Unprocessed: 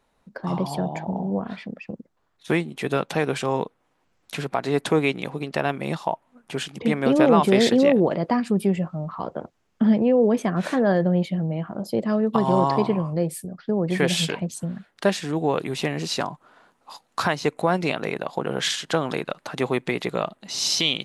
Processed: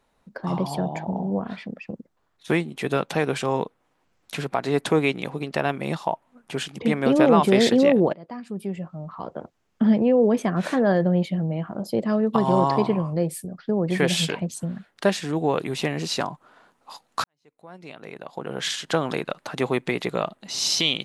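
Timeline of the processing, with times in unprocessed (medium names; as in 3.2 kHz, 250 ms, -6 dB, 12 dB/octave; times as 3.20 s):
8.13–9.93 s: fade in, from -21 dB
17.24–18.93 s: fade in quadratic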